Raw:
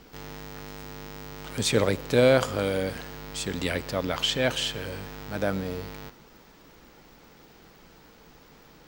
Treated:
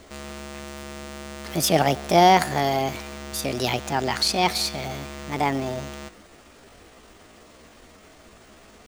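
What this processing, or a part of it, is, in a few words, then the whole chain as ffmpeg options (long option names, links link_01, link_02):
chipmunk voice: -af "asetrate=62367,aresample=44100,atempo=0.707107,volume=4dB"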